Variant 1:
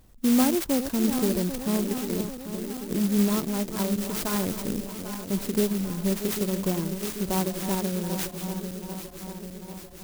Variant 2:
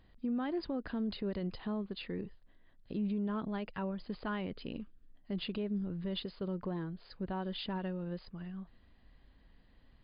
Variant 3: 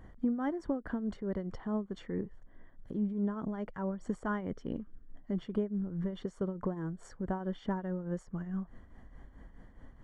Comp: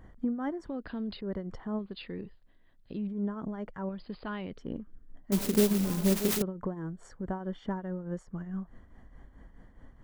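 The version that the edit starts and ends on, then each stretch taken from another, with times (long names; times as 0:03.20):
3
0:00.67–0:01.21: punch in from 2
0:01.79–0:03.07: punch in from 2
0:03.89–0:04.58: punch in from 2
0:05.32–0:06.42: punch in from 1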